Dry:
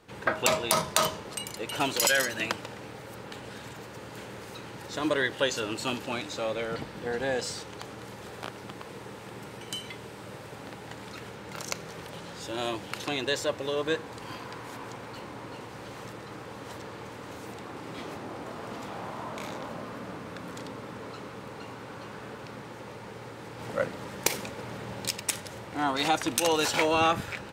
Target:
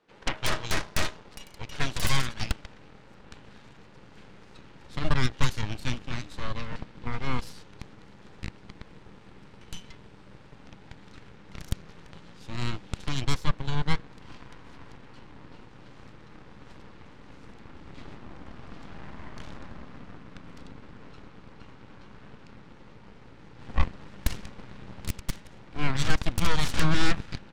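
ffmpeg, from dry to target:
-af "highpass=180,lowpass=5k,aeval=exprs='0.376*(cos(1*acos(clip(val(0)/0.376,-1,1)))-cos(1*PI/2))+0.188*(cos(3*acos(clip(val(0)/0.376,-1,1)))-cos(3*PI/2))+0.119*(cos(8*acos(clip(val(0)/0.376,-1,1)))-cos(8*PI/2))':c=same,asubboost=boost=4:cutoff=230,volume=-5dB"

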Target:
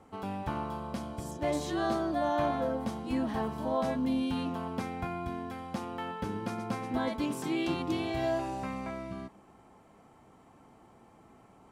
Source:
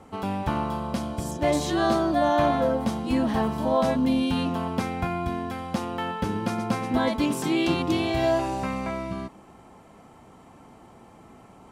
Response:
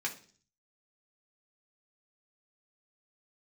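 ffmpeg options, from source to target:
-filter_complex "[0:a]asplit=2[a][b];[1:a]atrim=start_sample=2205,lowpass=3.1k[c];[b][c]afir=irnorm=-1:irlink=0,volume=-14.5dB[d];[a][d]amix=inputs=2:normalize=0,volume=-9dB"

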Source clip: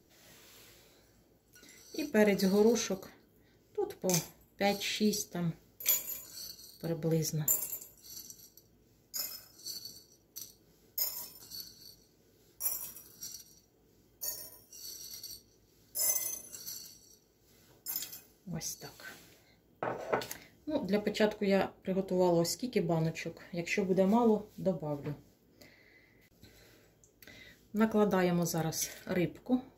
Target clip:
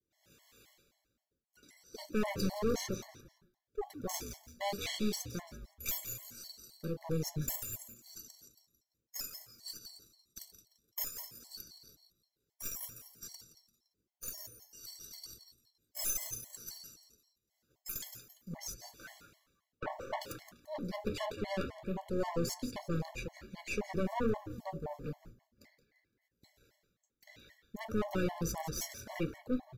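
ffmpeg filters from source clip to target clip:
-filter_complex "[0:a]aeval=exprs='(tanh(31.6*val(0)+0.65)-tanh(0.65))/31.6':c=same,agate=range=-33dB:threshold=-56dB:ratio=3:detection=peak,asplit=2[a][b];[b]asplit=3[c][d][e];[c]adelay=171,afreqshift=-120,volume=-12dB[f];[d]adelay=342,afreqshift=-240,volume=-21.9dB[g];[e]adelay=513,afreqshift=-360,volume=-31.8dB[h];[f][g][h]amix=inputs=3:normalize=0[i];[a][i]amix=inputs=2:normalize=0,afftfilt=real='re*gt(sin(2*PI*3.8*pts/sr)*(1-2*mod(floor(b*sr/1024/570),2)),0)':imag='im*gt(sin(2*PI*3.8*pts/sr)*(1-2*mod(floor(b*sr/1024/570),2)),0)':win_size=1024:overlap=0.75,volume=2.5dB"

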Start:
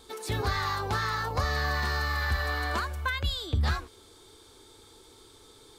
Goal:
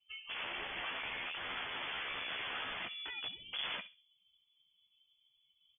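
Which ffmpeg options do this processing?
-filter_complex "[0:a]asubboost=boost=3.5:cutoff=210,afftdn=nr=26:nf=-45,equalizer=f=140:t=o:w=1.8:g=7,bandreject=f=50:t=h:w=6,bandreject=f=100:t=h:w=6,bandreject=f=150:t=h:w=6,bandreject=f=200:t=h:w=6,bandreject=f=250:t=h:w=6,bandreject=f=300:t=h:w=6,bandreject=f=350:t=h:w=6,bandreject=f=400:t=h:w=6,bandreject=f=450:t=h:w=6,acrossover=split=1300[a][b];[b]alimiter=level_in=10.5dB:limit=-24dB:level=0:latency=1:release=30,volume=-10.5dB[c];[a][c]amix=inputs=2:normalize=0,asplit=3[d][e][f];[d]bandpass=f=730:t=q:w=8,volume=0dB[g];[e]bandpass=f=1.09k:t=q:w=8,volume=-6dB[h];[f]bandpass=f=2.44k:t=q:w=8,volume=-9dB[i];[g][h][i]amix=inputs=3:normalize=0,aeval=exprs='(mod(119*val(0)+1,2)-1)/119':c=same,asplit=2[j][k];[k]adelay=13,volume=-7dB[l];[j][l]amix=inputs=2:normalize=0,asplit=2[m][n];[n]adelay=67,lowpass=f=990:p=1,volume=-13dB,asplit=2[o][p];[p]adelay=67,lowpass=f=990:p=1,volume=0.34,asplit=2[q][r];[r]adelay=67,lowpass=f=990:p=1,volume=0.34[s];[o][q][s]amix=inputs=3:normalize=0[t];[m][t]amix=inputs=2:normalize=0,lowpass=f=3k:t=q:w=0.5098,lowpass=f=3k:t=q:w=0.6013,lowpass=f=3k:t=q:w=0.9,lowpass=f=3k:t=q:w=2.563,afreqshift=-3500,volume=6.5dB"

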